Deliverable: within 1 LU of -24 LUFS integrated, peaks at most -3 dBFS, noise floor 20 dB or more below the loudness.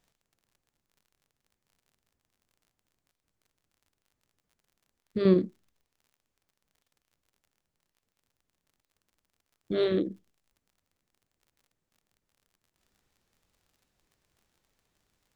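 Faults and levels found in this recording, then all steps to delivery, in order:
tick rate 40 per s; loudness -27.5 LUFS; peak level -10.5 dBFS; loudness target -24.0 LUFS
-> de-click; trim +3.5 dB

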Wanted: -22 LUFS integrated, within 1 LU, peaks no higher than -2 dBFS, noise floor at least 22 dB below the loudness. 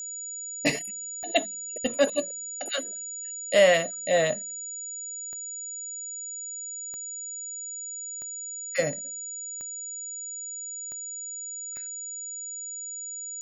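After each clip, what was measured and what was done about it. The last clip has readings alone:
clicks found 7; steady tone 6.9 kHz; tone level -34 dBFS; loudness -29.5 LUFS; peak level -7.5 dBFS; loudness target -22.0 LUFS
-> de-click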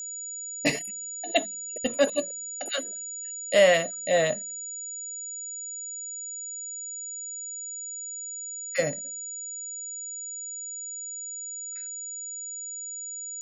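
clicks found 0; steady tone 6.9 kHz; tone level -34 dBFS
-> band-stop 6.9 kHz, Q 30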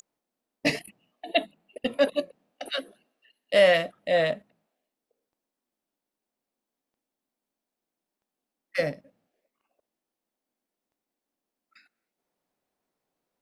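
steady tone not found; loudness -26.5 LUFS; peak level -8.0 dBFS; loudness target -22.0 LUFS
-> trim +4.5 dB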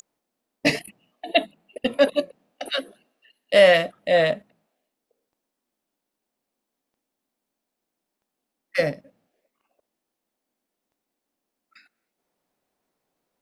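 loudness -22.0 LUFS; peak level -3.5 dBFS; noise floor -83 dBFS

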